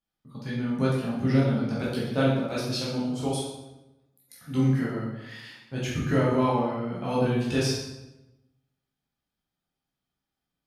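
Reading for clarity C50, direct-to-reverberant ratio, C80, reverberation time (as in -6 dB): 0.5 dB, -7.0 dB, 3.5 dB, 0.95 s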